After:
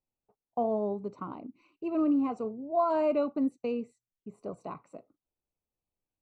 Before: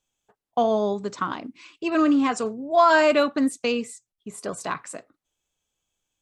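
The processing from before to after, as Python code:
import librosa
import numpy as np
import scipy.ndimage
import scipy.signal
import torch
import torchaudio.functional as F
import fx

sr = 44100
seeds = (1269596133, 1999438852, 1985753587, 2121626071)

y = np.convolve(x, np.full(26, 1.0 / 26))[:len(x)]
y = y * librosa.db_to_amplitude(-6.0)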